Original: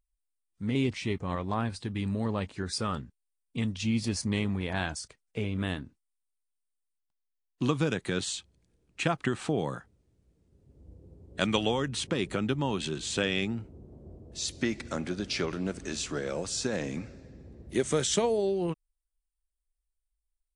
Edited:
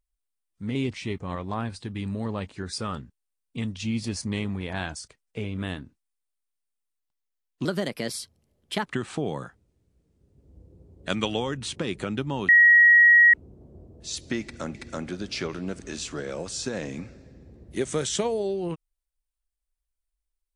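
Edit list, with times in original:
0:07.65–0:09.17: play speed 126%
0:12.80–0:13.65: beep over 1,900 Hz −11.5 dBFS
0:14.73–0:15.06: repeat, 2 plays

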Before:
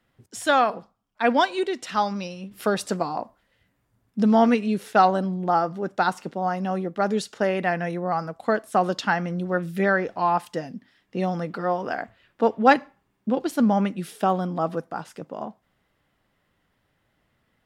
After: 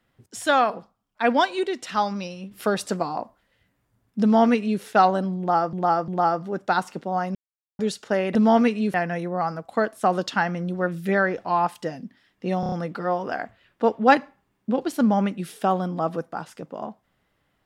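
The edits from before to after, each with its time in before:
0:04.22–0:04.81: duplicate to 0:07.65
0:05.38–0:05.73: repeat, 3 plays
0:06.65–0:07.09: silence
0:11.31: stutter 0.03 s, 5 plays

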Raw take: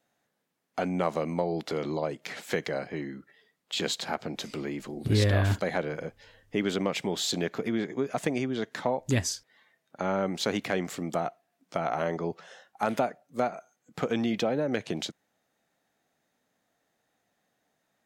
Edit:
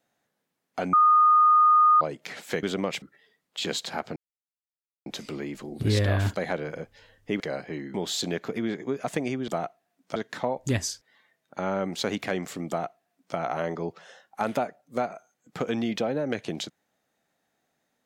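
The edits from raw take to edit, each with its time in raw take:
0:00.93–0:02.01: beep over 1,230 Hz −14.5 dBFS
0:02.63–0:03.17: swap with 0:06.65–0:07.04
0:04.31: splice in silence 0.90 s
0:11.10–0:11.78: duplicate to 0:08.58

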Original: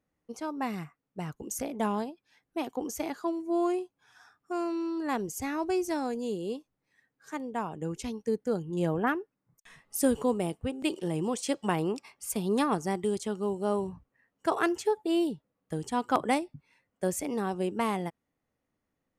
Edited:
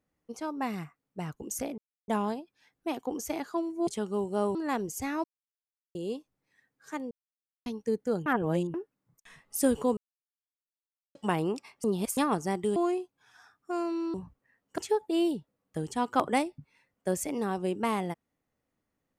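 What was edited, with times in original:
0:01.78: splice in silence 0.30 s
0:03.57–0:04.95: swap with 0:13.16–0:13.84
0:05.64–0:06.35: silence
0:07.51–0:08.06: silence
0:08.66–0:09.14: reverse
0:10.37–0:11.55: silence
0:12.24–0:12.57: reverse
0:14.48–0:14.74: remove

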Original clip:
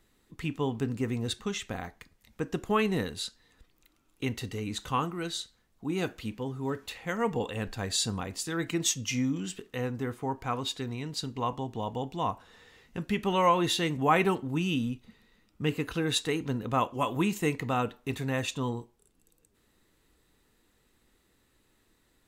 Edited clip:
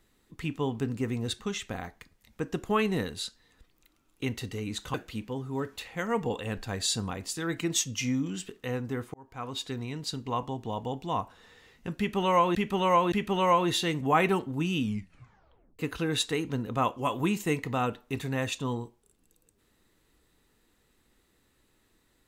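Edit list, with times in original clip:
0:04.94–0:06.04: remove
0:10.24–0:10.80: fade in
0:13.08–0:13.65: repeat, 3 plays
0:14.76: tape stop 0.99 s

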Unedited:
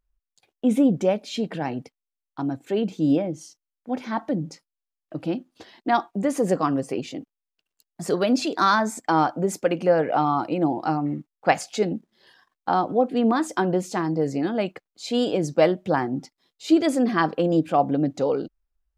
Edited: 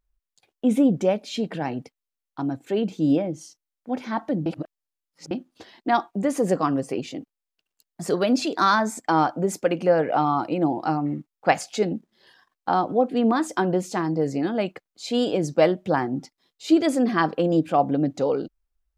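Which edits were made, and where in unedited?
0:04.46–0:05.31: reverse

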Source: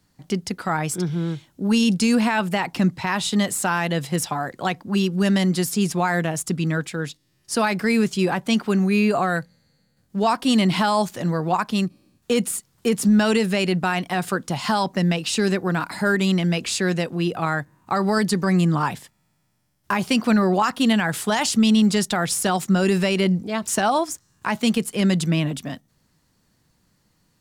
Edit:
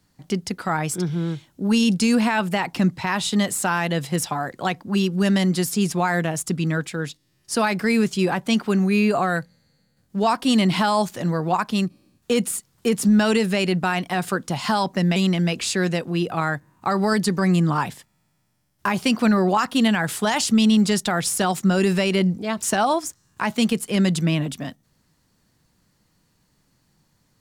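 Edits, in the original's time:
0:15.16–0:16.21: remove

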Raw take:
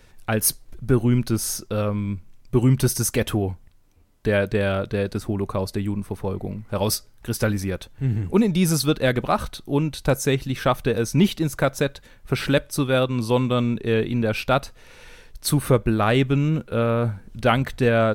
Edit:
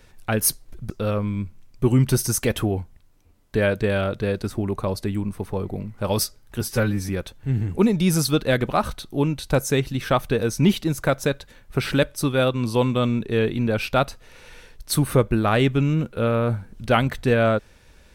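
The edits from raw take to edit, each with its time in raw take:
0:00.90–0:01.61: remove
0:07.32–0:07.64: time-stretch 1.5×

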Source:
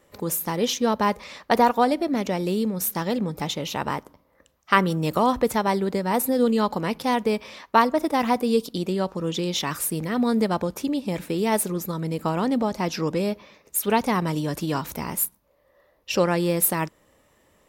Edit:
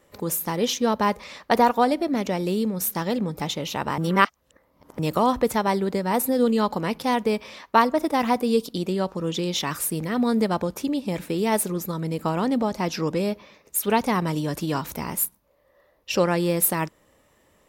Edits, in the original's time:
0:03.98–0:04.99: reverse

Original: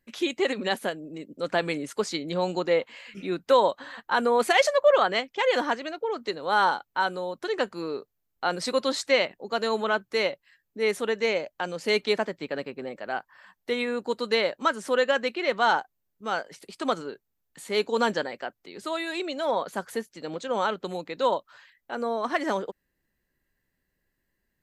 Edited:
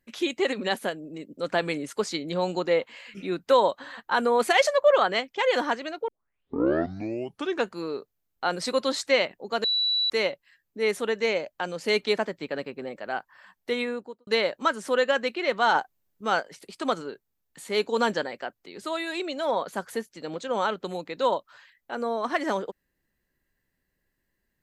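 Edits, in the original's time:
0:06.08: tape start 1.64 s
0:09.64–0:10.10: beep over 3,940 Hz −21.5 dBFS
0:13.78–0:14.27: fade out and dull
0:15.75–0:16.40: clip gain +4 dB

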